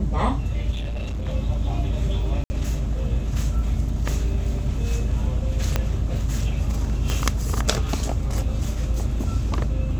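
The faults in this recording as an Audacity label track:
0.710000	1.290000	clipping −24.5 dBFS
2.440000	2.500000	drop-out 60 ms
5.760000	5.760000	click −7 dBFS
7.100000	7.100000	click −11 dBFS

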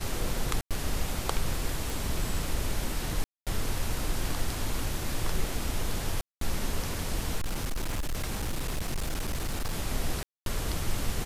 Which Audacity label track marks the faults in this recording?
0.610000	0.710000	drop-out 97 ms
1.900000	1.900000	click
3.240000	3.470000	drop-out 227 ms
6.210000	6.410000	drop-out 203 ms
7.370000	9.750000	clipping −26.5 dBFS
10.230000	10.460000	drop-out 232 ms

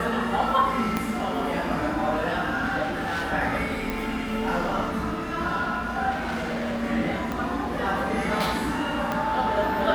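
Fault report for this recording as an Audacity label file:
0.970000	0.970000	click −11 dBFS
2.820000	3.320000	clipping −25 dBFS
3.900000	3.900000	click
6.100000	6.840000	clipping −25.5 dBFS
7.320000	7.320000	click −16 dBFS
9.120000	9.120000	click −13 dBFS

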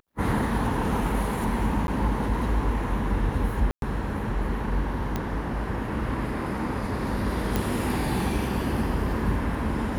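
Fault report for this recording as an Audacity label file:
1.870000	1.880000	drop-out 11 ms
3.710000	3.820000	drop-out 112 ms
5.160000	5.160000	click −14 dBFS
7.560000	7.560000	click

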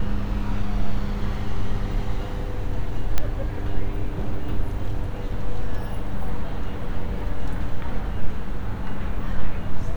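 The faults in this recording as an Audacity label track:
3.180000	3.180000	click −7 dBFS

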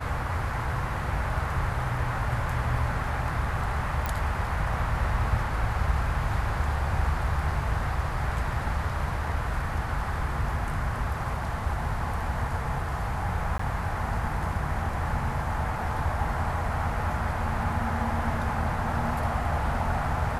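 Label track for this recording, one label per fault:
4.060000	4.060000	click
13.580000	13.590000	drop-out 14 ms

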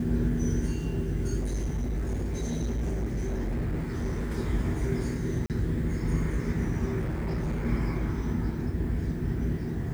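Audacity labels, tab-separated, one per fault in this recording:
1.390000	4.360000	clipping −26 dBFS
5.460000	5.500000	drop-out 38 ms
6.990000	7.660000	clipping −26.5 dBFS

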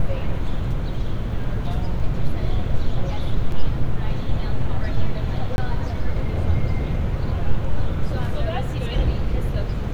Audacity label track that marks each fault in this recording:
3.520000	3.520000	drop-out 2.4 ms
5.560000	5.580000	drop-out 21 ms

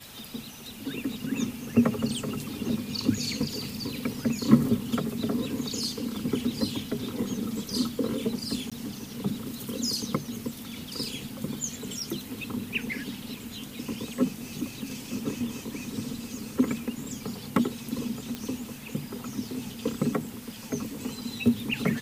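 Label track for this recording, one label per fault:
8.700000	8.720000	drop-out 16 ms
18.350000	18.350000	click −18 dBFS

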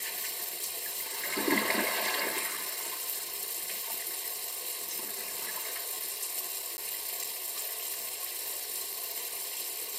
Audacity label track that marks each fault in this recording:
0.780000	1.270000	clipping −30 dBFS
6.770000	6.780000	drop-out 10 ms

